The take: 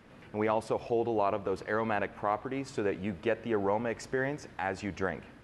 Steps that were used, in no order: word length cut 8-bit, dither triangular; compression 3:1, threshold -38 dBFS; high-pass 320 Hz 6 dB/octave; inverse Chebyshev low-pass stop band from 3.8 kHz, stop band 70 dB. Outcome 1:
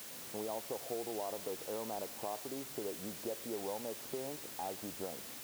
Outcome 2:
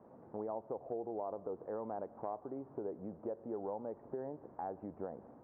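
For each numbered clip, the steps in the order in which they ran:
inverse Chebyshev low-pass > compression > word length cut > high-pass; word length cut > inverse Chebyshev low-pass > compression > high-pass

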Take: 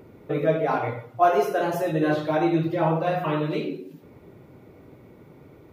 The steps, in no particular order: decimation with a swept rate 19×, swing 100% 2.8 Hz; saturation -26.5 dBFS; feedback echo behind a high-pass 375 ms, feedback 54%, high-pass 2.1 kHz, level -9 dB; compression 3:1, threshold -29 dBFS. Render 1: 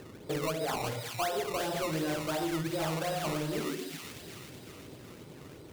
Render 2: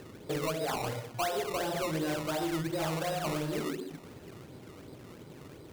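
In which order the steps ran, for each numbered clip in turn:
decimation with a swept rate > feedback echo behind a high-pass > compression > saturation; compression > saturation > feedback echo behind a high-pass > decimation with a swept rate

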